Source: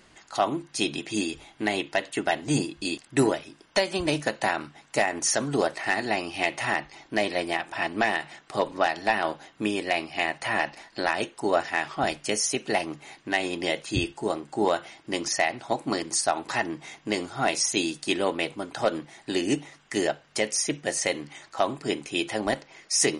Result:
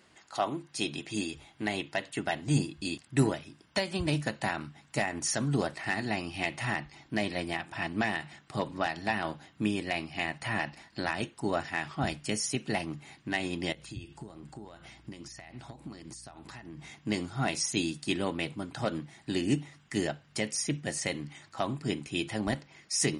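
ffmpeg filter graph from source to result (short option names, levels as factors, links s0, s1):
-filter_complex "[0:a]asettb=1/sr,asplit=3[s0][s1][s2];[s0]atrim=end=13.724[s3];[s1]atrim=start=13.72:end=16.9,asetpts=PTS-STARTPTS,afade=t=in:d=0.004:c=qsin,afade=t=out:st=3.176:d=0.004:c=qsin,acompressor=threshold=0.0141:ratio=16:attack=3.2:release=140:knee=1:detection=peak,aeval=exprs='val(0)+0.000708*(sin(2*PI*60*n/s)+sin(2*PI*2*60*n/s)/2+sin(2*PI*3*60*n/s)/3+sin(2*PI*4*60*n/s)/4+sin(2*PI*5*60*n/s)/5)':c=same[s4];[s2]atrim=start=16.896[s5];[s3][s4]acrossfade=d=0.004:c1=hsin:c2=qsin[s6];[s6][s5]acrossfade=d=0.004:c1=qsin:c2=hsin,highpass=76,bandreject=f=6200:w=16,asubboost=boost=5.5:cutoff=190,volume=0.531"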